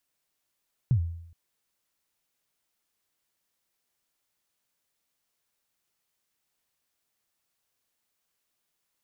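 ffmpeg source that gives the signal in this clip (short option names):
-f lavfi -i "aevalsrc='0.15*pow(10,-3*t/0.73)*sin(2*PI*(140*0.087/log(84/140)*(exp(log(84/140)*min(t,0.087)/0.087)-1)+84*max(t-0.087,0)))':d=0.42:s=44100"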